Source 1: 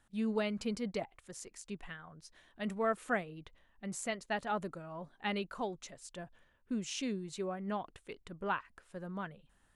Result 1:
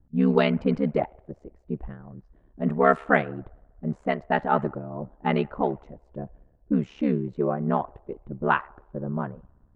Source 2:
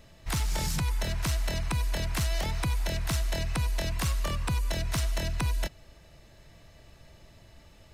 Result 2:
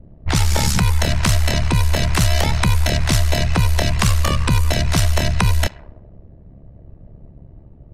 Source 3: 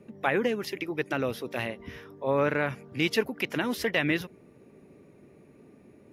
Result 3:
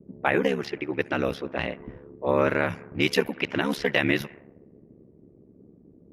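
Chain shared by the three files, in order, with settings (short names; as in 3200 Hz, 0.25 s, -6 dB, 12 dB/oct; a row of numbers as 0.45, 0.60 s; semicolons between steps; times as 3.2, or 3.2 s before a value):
band-limited delay 65 ms, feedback 81%, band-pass 1300 Hz, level -23.5 dB; ring modulator 35 Hz; low-pass opened by the level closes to 310 Hz, open at -27 dBFS; normalise peaks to -6 dBFS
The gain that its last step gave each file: +16.0, +16.0, +6.0 dB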